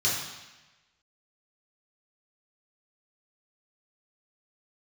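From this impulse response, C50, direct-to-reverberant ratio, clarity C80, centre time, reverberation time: 1.5 dB, -7.0 dB, 4.0 dB, 63 ms, 1.1 s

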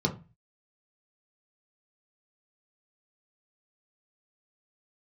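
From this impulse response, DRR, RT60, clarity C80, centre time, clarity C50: 0.0 dB, 0.30 s, 20.0 dB, 11 ms, 14.0 dB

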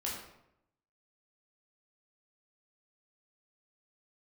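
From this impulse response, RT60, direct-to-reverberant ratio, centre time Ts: 0.80 s, -5.0 dB, 50 ms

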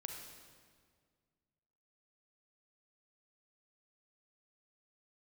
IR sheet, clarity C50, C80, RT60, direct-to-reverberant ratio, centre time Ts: 3.0 dB, 4.5 dB, 1.9 s, 2.0 dB, 58 ms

